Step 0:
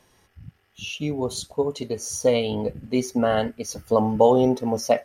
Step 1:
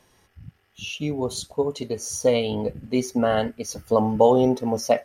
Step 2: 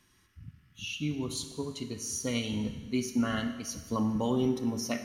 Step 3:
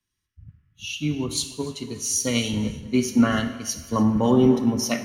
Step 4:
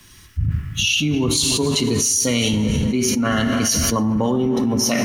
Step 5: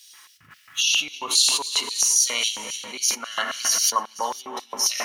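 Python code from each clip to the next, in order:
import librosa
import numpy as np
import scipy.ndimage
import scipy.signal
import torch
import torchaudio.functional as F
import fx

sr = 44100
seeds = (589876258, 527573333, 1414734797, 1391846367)

y1 = x
y2 = fx.band_shelf(y1, sr, hz=610.0, db=-14.0, octaves=1.3)
y2 = fx.rev_schroeder(y2, sr, rt60_s=1.4, comb_ms=26, drr_db=8.5)
y2 = y2 * librosa.db_to_amplitude(-5.0)
y3 = fx.echo_feedback(y2, sr, ms=291, feedback_pct=53, wet_db=-14.5)
y3 = fx.band_widen(y3, sr, depth_pct=70)
y3 = y3 * librosa.db_to_amplitude(8.5)
y4 = fx.env_flatten(y3, sr, amount_pct=100)
y4 = y4 * librosa.db_to_amplitude(-5.5)
y5 = y4 + 10.0 ** (-19.0 / 20.0) * np.pad(y4, (int(510 * sr / 1000.0), 0))[:len(y4)]
y5 = fx.filter_lfo_highpass(y5, sr, shape='square', hz=3.7, low_hz=960.0, high_hz=4000.0, q=1.7)
y5 = y5 * librosa.db_to_amplitude(-1.5)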